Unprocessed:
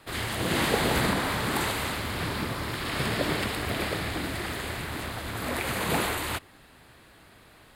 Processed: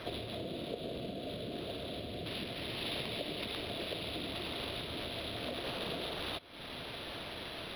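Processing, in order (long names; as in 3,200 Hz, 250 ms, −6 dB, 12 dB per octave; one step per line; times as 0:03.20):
high-shelf EQ 2,900 Hz −10 dB, from 0:02.26 +3.5 dB
bit-depth reduction 10 bits, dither triangular
brick-wall band-stop 730–3,300 Hz
downward compressor 10 to 1, threshold −48 dBFS, peak gain reduction 26.5 dB
low-pass filter 5,500 Hz 12 dB per octave
spectral tilt +3 dB per octave
linearly interpolated sample-rate reduction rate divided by 6×
level +14.5 dB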